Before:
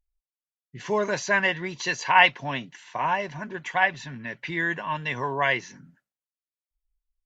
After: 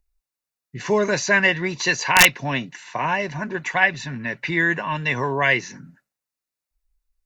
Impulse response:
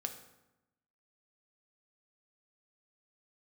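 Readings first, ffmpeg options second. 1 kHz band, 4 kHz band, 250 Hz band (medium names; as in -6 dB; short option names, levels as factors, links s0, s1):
+0.5 dB, +6.0 dB, +7.5 dB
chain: -filter_complex "[0:a]bandreject=f=3200:w=6.9,acrossover=split=560|1400[s0][s1][s2];[s1]acompressor=threshold=0.0126:ratio=5[s3];[s0][s3][s2]amix=inputs=3:normalize=0,aeval=exprs='(mod(2.99*val(0)+1,2)-1)/2.99':c=same,volume=2.37"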